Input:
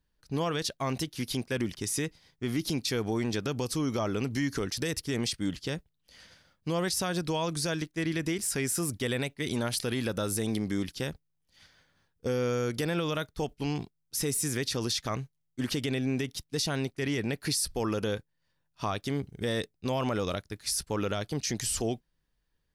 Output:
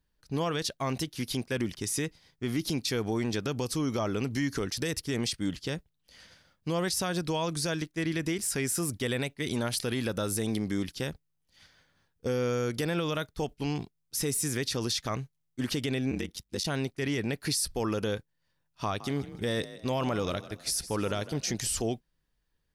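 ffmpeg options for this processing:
-filter_complex "[0:a]asplit=3[a][b][c];[a]afade=t=out:st=16.1:d=0.02[d];[b]aeval=exprs='val(0)*sin(2*PI*48*n/s)':c=same,afade=t=in:st=16.1:d=0.02,afade=t=out:st=16.63:d=0.02[e];[c]afade=t=in:st=16.63:d=0.02[f];[d][e][f]amix=inputs=3:normalize=0,asettb=1/sr,asplit=3[g][h][i];[g]atrim=end=18.844[j];[h]atrim=start=18.84:end=21.67,asetpts=PTS-STARTPTS,afade=t=in:d=0.004:c=qsin,afade=t=out:st=2.826:d=0.004:c=qsin,asplit=4[k][l][m][n];[l]adelay=157,afreqshift=37,volume=-15dB[o];[m]adelay=314,afreqshift=74,volume=-23.6dB[p];[n]adelay=471,afreqshift=111,volume=-32.3dB[q];[k][o][p][q]amix=inputs=4:normalize=0,atrim=end_sample=124803[r];[i]atrim=start=21.666[s];[j][r]acrossfade=d=0.004:c1=hsin:c2=qsin[t];[t][s]acrossfade=d=0.004:c1=qsin:c2=hsin"

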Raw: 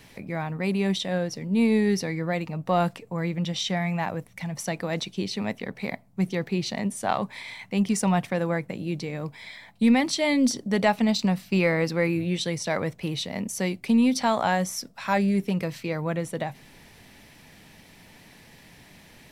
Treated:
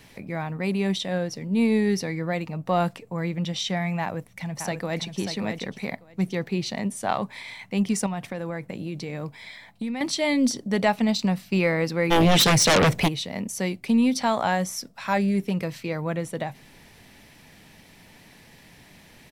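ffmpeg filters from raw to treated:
-filter_complex "[0:a]asplit=2[a][b];[b]afade=t=in:st=4.01:d=0.01,afade=t=out:st=5.18:d=0.01,aecho=0:1:590|1180|1770:0.446684|0.0670025|0.0100504[c];[a][c]amix=inputs=2:normalize=0,asettb=1/sr,asplit=3[d][e][f];[d]atrim=end=8.064[g];[e]atrim=start=8.06:end=10.01,asetpts=PTS-STARTPTS,afade=t=in:d=0.004:c=qsin,afade=t=out:st=1.946:d=0.004:c=qsin,acompressor=threshold=-27dB:ratio=6:attack=3.2:release=140:knee=1:detection=peak[h];[f]atrim=start=10.006[i];[g][h]acrossfade=d=0.004:c1=hsin:c2=qsin[j];[j][i]acrossfade=d=0.004:c1=qsin:c2=hsin,asplit=3[k][l][m];[k]afade=t=out:st=12.1:d=0.02[n];[l]aeval=exprs='0.2*sin(PI/2*4.47*val(0)/0.2)':c=same,afade=t=in:st=12.1:d=0.02,afade=t=out:st=13.07:d=0.02[o];[m]afade=t=in:st=13.07:d=0.02[p];[n][o][p]amix=inputs=3:normalize=0"

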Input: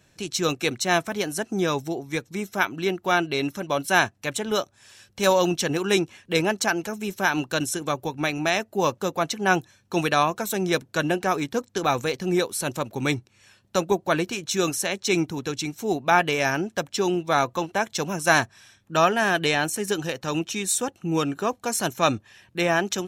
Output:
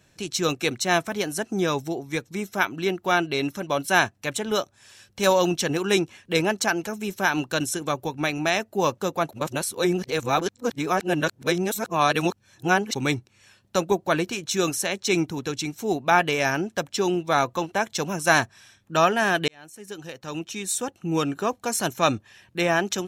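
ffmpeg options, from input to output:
-filter_complex "[0:a]asplit=4[a][b][c][d];[a]atrim=end=9.292[e];[b]atrim=start=9.288:end=12.952,asetpts=PTS-STARTPTS,areverse[f];[c]atrim=start=12.948:end=19.48,asetpts=PTS-STARTPTS,afade=t=out:st=6.528:d=0.004:c=hsin[g];[d]atrim=start=19.48,asetpts=PTS-STARTPTS,afade=t=in:d=1.74[h];[e][f]acrossfade=d=0.004:c1=hsin:c2=hsin[i];[g][h]concat=n=2:v=0:a=1[j];[i][j]acrossfade=d=0.004:c1=hsin:c2=hsin"

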